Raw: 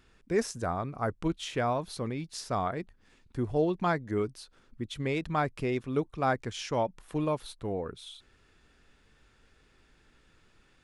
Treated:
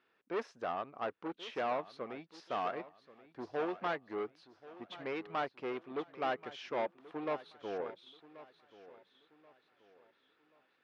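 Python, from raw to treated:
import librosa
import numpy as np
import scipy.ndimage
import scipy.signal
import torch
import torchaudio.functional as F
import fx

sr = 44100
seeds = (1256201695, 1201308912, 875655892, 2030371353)

y = 10.0 ** (-31.0 / 20.0) * np.tanh(x / 10.0 ** (-31.0 / 20.0))
y = scipy.signal.sosfilt(scipy.signal.butter(2, 420.0, 'highpass', fs=sr, output='sos'), y)
y = fx.air_absorb(y, sr, metres=270.0)
y = fx.echo_feedback(y, sr, ms=1082, feedback_pct=41, wet_db=-12.0)
y = fx.upward_expand(y, sr, threshold_db=-53.0, expansion=1.5)
y = y * librosa.db_to_amplitude(3.5)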